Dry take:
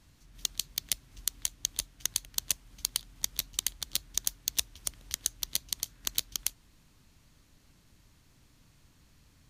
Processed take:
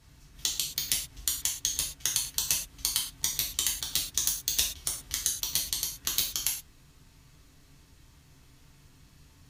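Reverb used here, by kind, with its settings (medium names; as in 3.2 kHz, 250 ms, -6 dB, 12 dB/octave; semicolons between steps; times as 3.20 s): gated-style reverb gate 150 ms falling, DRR -3 dB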